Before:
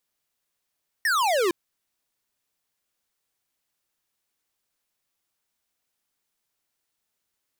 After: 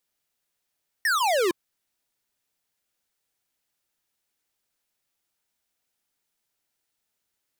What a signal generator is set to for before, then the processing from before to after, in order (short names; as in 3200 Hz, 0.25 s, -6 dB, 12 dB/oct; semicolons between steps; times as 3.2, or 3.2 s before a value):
laser zap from 1900 Hz, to 330 Hz, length 0.46 s square, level -22 dB
notch 1100 Hz, Q 12